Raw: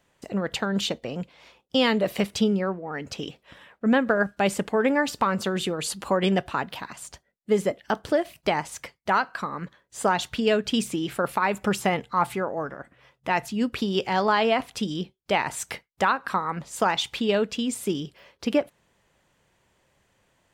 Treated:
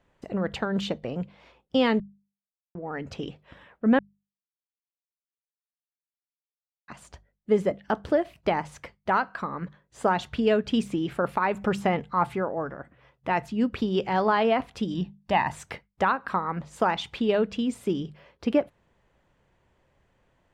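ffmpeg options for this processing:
-filter_complex "[0:a]asettb=1/sr,asplit=3[a][b][c];[a]atrim=end=14.944[d];[b]atrim=start=14.94:end=15.52,asetpts=PTS-STARTPTS,afade=t=in:d=0.004:c=qsin,afade=t=out:st=0.576:d=0.004:c=qsin,aecho=1:1:1.1:0.63,atrim=end_sample=25578[e];[c]atrim=start=15.516[f];[d][e]acrossfade=d=0.004:c1=hsin:c2=qsin[g];[g][f]acrossfade=d=0.004:c1=qsin:c2=hsin,asplit=5[h][i][j][k][l];[h]atrim=end=2,asetpts=PTS-STARTPTS,afade=t=out:st=1.996:d=0.004:c=hsin[m];[i]atrim=start=2:end=2.75,asetpts=PTS-STARTPTS,volume=0[n];[j]atrim=start=2.75:end=3.99,asetpts=PTS-STARTPTS,afade=t=in:d=0.004:c=hsin,afade=t=out:st=1.236:d=0.004:c=hsin[o];[k]atrim=start=3.99:end=6.88,asetpts=PTS-STARTPTS,volume=0[p];[l]atrim=start=6.88,asetpts=PTS-STARTPTS,afade=t=in:d=0.004:c=hsin[q];[m][n][o][p][q]concat=n=5:v=0:a=1,lowpass=f=1.7k:p=1,lowshelf=f=71:g=9.5,bandreject=f=50:t=h:w=6,bandreject=f=100:t=h:w=6,bandreject=f=150:t=h:w=6,bandreject=f=200:t=h:w=6"

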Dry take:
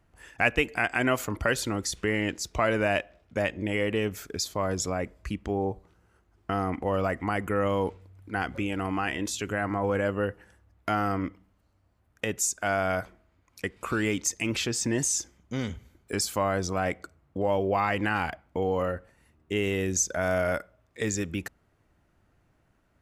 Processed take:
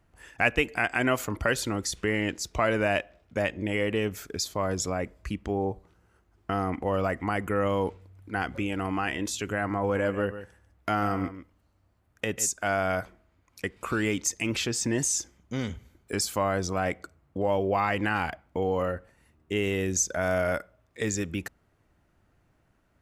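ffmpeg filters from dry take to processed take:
-filter_complex "[0:a]asettb=1/sr,asplit=3[a][b][c];[a]atrim=end=9.824[d];[b]atrim=start=9.82:end=12.5,asetpts=PTS-STARTPTS,afade=t=in:d=0.004:c=qsin,afade=t=out:st=2.676:d=0.004:c=qsin,aecho=1:1:144:0.251,atrim=end_sample=118188[e];[c]atrim=start=12.496[f];[d][e]acrossfade=d=0.004:c1=hsin:c2=qsin[g];[g][f]acrossfade=d=0.004:c1=qsin:c2=hsin"

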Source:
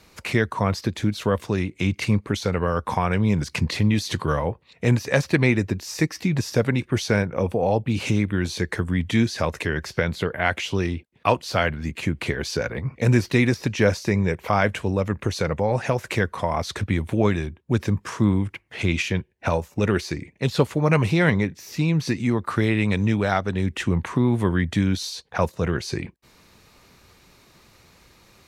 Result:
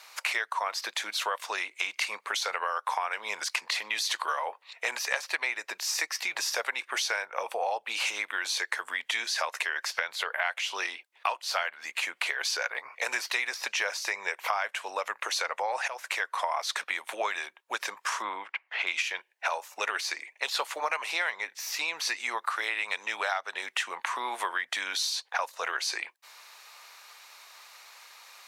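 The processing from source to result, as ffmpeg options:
-filter_complex "[0:a]asettb=1/sr,asplit=3[a][b][c];[a]atrim=end=18.224[d];[b]atrim=start=18.22:end=18.87,asetpts=PTS-STARTPTS,afade=t=in:d=0.004:c=qsin,afade=t=out:st=0.646:d=0.004:c=qsin,lowpass=2.9k[e];[c]atrim=start=18.866[f];[d][e]acrossfade=d=0.004:c1=hsin:c2=qsin[g];[g][f]acrossfade=d=0.004:c1=qsin:c2=hsin,asplit=2[h][i];[h]atrim=end=15.88,asetpts=PTS-STARTPTS,afade=t=out:st=15.876:d=0.004:c=hsin:silence=0.188365[j];[i]atrim=start=15.88,asetpts=PTS-STARTPTS,afade=t=in:d=0.6:silence=0.188365[k];[j][k]concat=n=2:v=0:a=1,highpass=f=760:w=0.5412,highpass=f=760:w=1.3066,acompressor=threshold=-32dB:ratio=6,volume=5.5dB"

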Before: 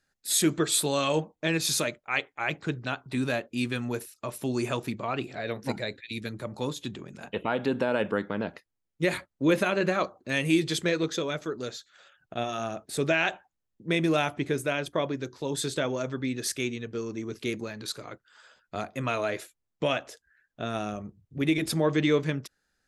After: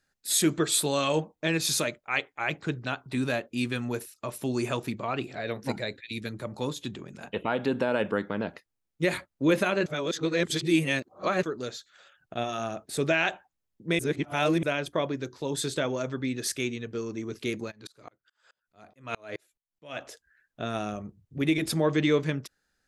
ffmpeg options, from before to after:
-filter_complex "[0:a]asplit=3[a][b][c];[a]afade=t=out:st=17.7:d=0.02[d];[b]aeval=exprs='val(0)*pow(10,-34*if(lt(mod(-4.7*n/s,1),2*abs(-4.7)/1000),1-mod(-4.7*n/s,1)/(2*abs(-4.7)/1000),(mod(-4.7*n/s,1)-2*abs(-4.7)/1000)/(1-2*abs(-4.7)/1000))/20)':c=same,afade=t=in:st=17.7:d=0.02,afade=t=out:st=19.99:d=0.02[e];[c]afade=t=in:st=19.99:d=0.02[f];[d][e][f]amix=inputs=3:normalize=0,asplit=5[g][h][i][j][k];[g]atrim=end=9.862[l];[h]atrim=start=9.858:end=11.432,asetpts=PTS-STARTPTS,areverse[m];[i]atrim=start=11.428:end=13.992[n];[j]atrim=start=13.988:end=14.632,asetpts=PTS-STARTPTS,areverse[o];[k]atrim=start=14.628[p];[l][m]acrossfade=d=0.004:c1=hsin:c2=hsin[q];[q][n]acrossfade=d=0.004:c1=hsin:c2=hsin[r];[r][o]acrossfade=d=0.004:c1=hsin:c2=hsin[s];[s][p]acrossfade=d=0.004:c1=hsin:c2=hsin"

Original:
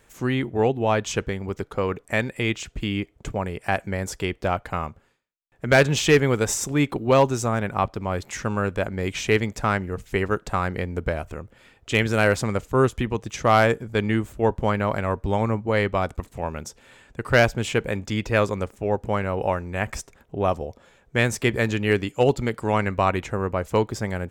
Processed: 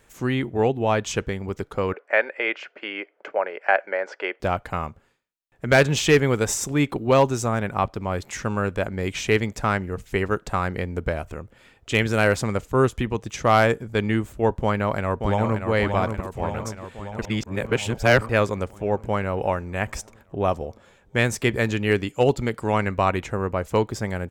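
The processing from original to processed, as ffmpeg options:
-filter_complex "[0:a]asettb=1/sr,asplit=3[a][b][c];[a]atrim=end=1.934[d];[b]atrim=start=1.93:end=4.4,asetpts=PTS-STARTPTS,afade=t=in:d=0.004:c=qsin,afade=t=out:st=2.466:d=0.004:c=qsin,highpass=f=390:w=0.5412,highpass=f=390:w=1.3066,equalizer=f=580:t=q:w=4:g=8,equalizer=f=830:t=q:w=4:g=3,equalizer=f=1.5k:t=q:w=4:g=9,equalizer=f=2.1k:t=q:w=4:g=4,equalizer=f=3.7k:t=q:w=4:g=-10,lowpass=f=4k:w=0.5412,lowpass=f=4k:w=1.3066[e];[c]atrim=start=4.396[f];[d][e]acrossfade=d=0.004:c1=hsin:c2=qsin[g];[g][f]acrossfade=d=0.004:c1=qsin:c2=hsin,asplit=2[h][i];[i]afade=t=in:st=14.62:d=0.01,afade=t=out:st=15.68:d=0.01,aecho=0:1:580|1160|1740|2320|2900|3480|4060|4640|5220|5800:0.501187|0.325772|0.211752|0.137639|0.0894651|0.0581523|0.037799|0.0245693|0.0159701|0.0103805[j];[h][j]amix=inputs=2:normalize=0,asplit=3[k][l][m];[k]atrim=end=17.222[n];[l]atrim=start=17.218:end=18.292,asetpts=PTS-STARTPTS,areverse[o];[m]atrim=start=18.288[p];[n][o]acrossfade=d=0.004:c1=hsin:c2=hsin[q];[q][p]acrossfade=d=0.004:c1=hsin:c2=hsin"

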